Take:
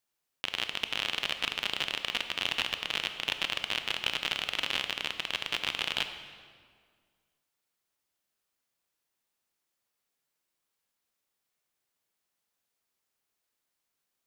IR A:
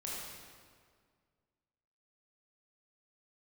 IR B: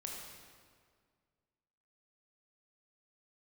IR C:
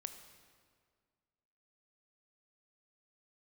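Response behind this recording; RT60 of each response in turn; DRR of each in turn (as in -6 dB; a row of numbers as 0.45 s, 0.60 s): C; 1.9 s, 1.9 s, 1.9 s; -6.0 dB, -1.5 dB, 8.0 dB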